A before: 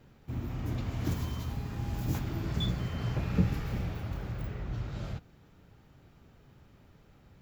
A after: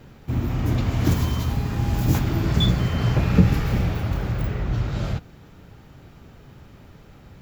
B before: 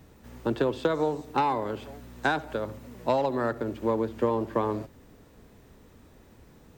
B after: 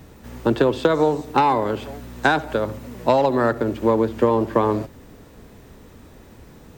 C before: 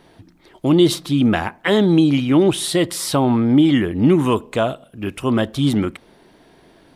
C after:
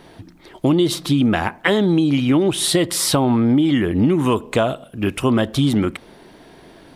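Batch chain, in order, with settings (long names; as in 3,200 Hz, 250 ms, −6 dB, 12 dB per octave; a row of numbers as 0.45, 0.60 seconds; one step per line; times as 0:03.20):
downward compressor 6 to 1, threshold −19 dBFS
normalise the peak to −3 dBFS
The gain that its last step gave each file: +12.0, +9.0, +5.5 decibels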